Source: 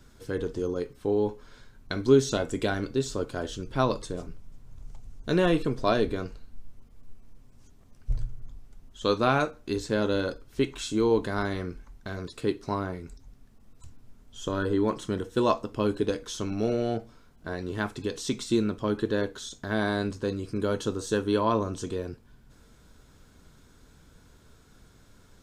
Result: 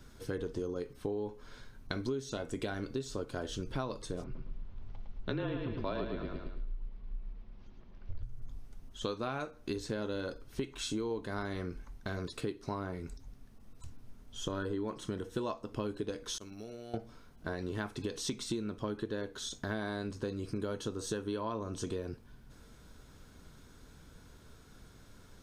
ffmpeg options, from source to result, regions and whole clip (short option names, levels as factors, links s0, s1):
-filter_complex "[0:a]asettb=1/sr,asplit=3[s0][s1][s2];[s0]atrim=end=4.244[s3];[s1]atrim=start=4.24:end=8.23,asetpts=PTS-STARTPTS,afade=t=in:d=0.004:c=qsin,afade=t=out:st=3.986:d=0.004:c=qsin,lowpass=f=4000:w=0.5412,lowpass=f=4000:w=1.3066,afreqshift=-33,aecho=1:1:109|218|327|436|545:0.596|0.238|0.0953|0.0381|0.0152,atrim=end_sample=175959[s4];[s2]atrim=start=8.226[s5];[s3][s4]acrossfade=d=0.004:c1=hsin:c2=qsin[s6];[s6][s5]acrossfade=d=0.004:c1=qsin:c2=hsin,asettb=1/sr,asplit=3[s7][s8][s9];[s7]atrim=end=16.384[s10];[s8]atrim=start=16.38:end=16.94,asetpts=PTS-STARTPTS,afade=t=in:d=0.004:c=qsin,afade=t=out:st=0.556:d=0.004:c=qsin,agate=range=0.0224:threshold=0.0891:ratio=3:release=100:detection=peak,aemphasis=mode=production:type=75fm,acompressor=threshold=0.00794:ratio=6:attack=3.2:release=140:knee=1:detection=peak[s11];[s9]atrim=start=16.936[s12];[s10][s11]acrossfade=d=0.004:c1=hsin:c2=qsin[s13];[s13][s12]acrossfade=d=0.004:c1=qsin:c2=hsin,bandreject=f=7400:w=11,acompressor=threshold=0.0224:ratio=8"